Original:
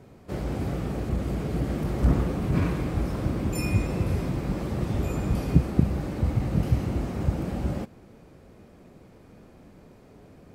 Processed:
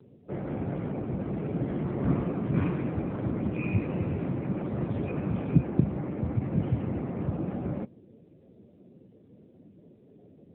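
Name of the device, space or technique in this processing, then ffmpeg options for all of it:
mobile call with aggressive noise cancelling: -af "highpass=f=110:p=1,afftdn=nr=17:nf=-47" -ar 8000 -c:a libopencore_amrnb -b:a 7950

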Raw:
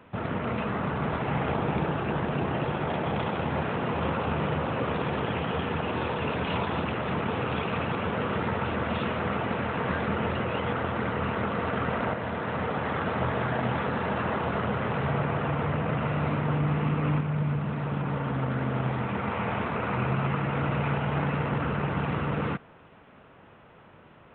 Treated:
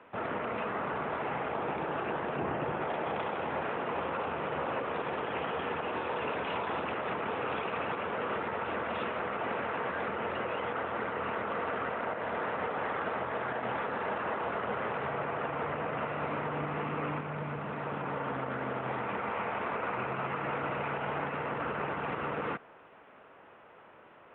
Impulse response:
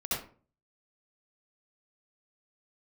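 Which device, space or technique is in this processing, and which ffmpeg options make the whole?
DJ mixer with the lows and highs turned down: -filter_complex "[0:a]acrossover=split=310 3400:gain=0.178 1 0.0794[a][b][c];[a][b][c]amix=inputs=3:normalize=0,alimiter=level_in=0.5dB:limit=-24dB:level=0:latency=1:release=106,volume=-0.5dB,asettb=1/sr,asplit=3[d][e][f];[d]atrim=end=2.374[g];[e]atrim=start=2.37:end=2.82,asetpts=PTS-STARTPTS,afade=t=in:d=0.004:c=qsin,afade=t=out:st=0.446:d=0.004:c=qsin,bass=f=250:g=6,treble=f=4k:g=-12[h];[f]atrim=start=2.816[i];[g][h]acrossfade=d=0.004:c1=hsin:c2=qsin[j];[j][i]acrossfade=d=0.004:c1=qsin:c2=hsin"

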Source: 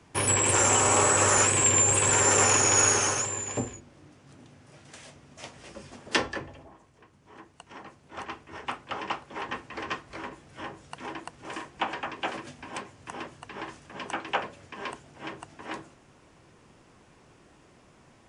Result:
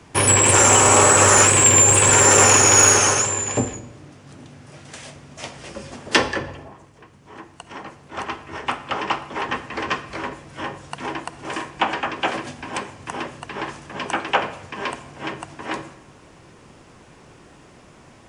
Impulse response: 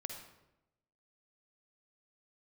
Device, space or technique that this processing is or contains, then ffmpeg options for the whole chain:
saturated reverb return: -filter_complex "[0:a]asplit=2[a][b];[1:a]atrim=start_sample=2205[c];[b][c]afir=irnorm=-1:irlink=0,asoftclip=type=tanh:threshold=-19dB,volume=-3.5dB[d];[a][d]amix=inputs=2:normalize=0,volume=6dB"

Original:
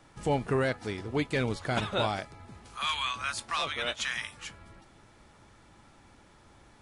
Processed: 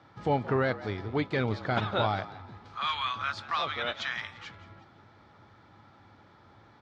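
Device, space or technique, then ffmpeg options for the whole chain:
frequency-shifting delay pedal into a guitar cabinet: -filter_complex "[0:a]asplit=4[a][b][c][d];[b]adelay=174,afreqshift=76,volume=-17dB[e];[c]adelay=348,afreqshift=152,volume=-25.9dB[f];[d]adelay=522,afreqshift=228,volume=-34.7dB[g];[a][e][f][g]amix=inputs=4:normalize=0,highpass=100,equalizer=f=100:t=q:w=4:g=9,equalizer=f=800:t=q:w=4:g=3,equalizer=f=1.3k:t=q:w=4:g=4,equalizer=f=2.7k:t=q:w=4:g=-6,lowpass=f=4.5k:w=0.5412,lowpass=f=4.5k:w=1.3066"

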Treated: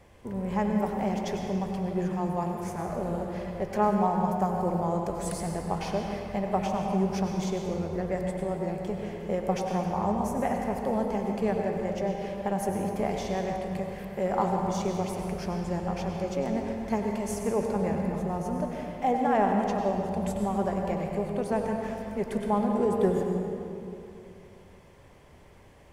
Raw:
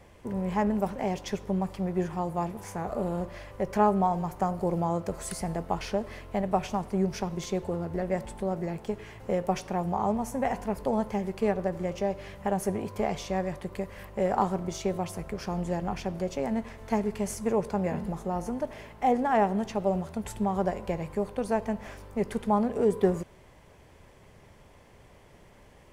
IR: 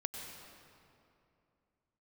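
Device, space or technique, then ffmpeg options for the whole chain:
stairwell: -filter_complex "[1:a]atrim=start_sample=2205[a];[0:a][a]afir=irnorm=-1:irlink=0"

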